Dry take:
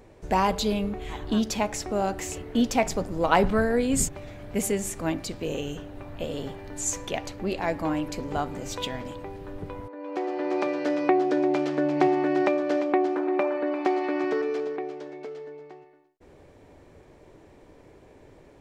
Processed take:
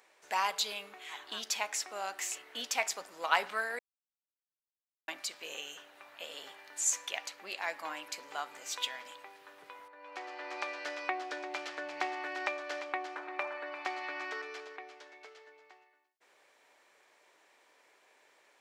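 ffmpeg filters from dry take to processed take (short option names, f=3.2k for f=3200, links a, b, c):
-filter_complex "[0:a]asplit=3[a][b][c];[a]atrim=end=3.79,asetpts=PTS-STARTPTS,afade=t=out:st=3.786:d=0.004:c=hsin[d];[b]atrim=start=3.79:end=5.08,asetpts=PTS-STARTPTS,volume=0[e];[c]atrim=start=5.08,asetpts=PTS-STARTPTS,afade=t=in:d=0.004:c=hsin[f];[d][e][f]concat=n=3:v=0:a=1,highpass=1.3k,volume=-1dB"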